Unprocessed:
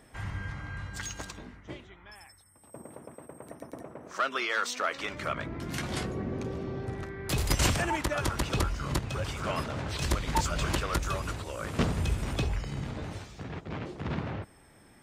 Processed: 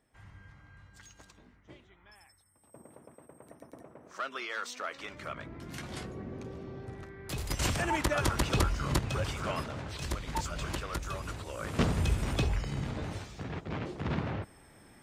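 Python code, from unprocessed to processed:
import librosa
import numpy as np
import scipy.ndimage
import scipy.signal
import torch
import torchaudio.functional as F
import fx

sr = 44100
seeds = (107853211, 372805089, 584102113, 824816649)

y = fx.gain(x, sr, db=fx.line((1.11, -16.5), (2.06, -7.5), (7.51, -7.5), (8.0, 1.0), (9.17, 1.0), (9.96, -6.5), (11.03, -6.5), (11.93, 0.5)))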